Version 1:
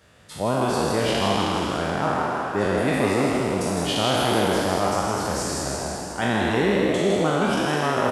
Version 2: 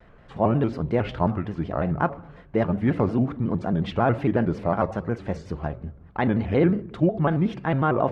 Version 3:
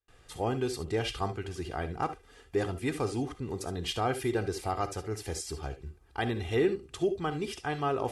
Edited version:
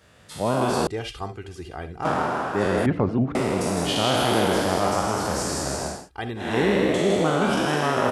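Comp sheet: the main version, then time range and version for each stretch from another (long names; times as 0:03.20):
1
0:00.87–0:02.05: punch in from 3
0:02.86–0:03.35: punch in from 2
0:05.98–0:06.47: punch in from 3, crossfade 0.24 s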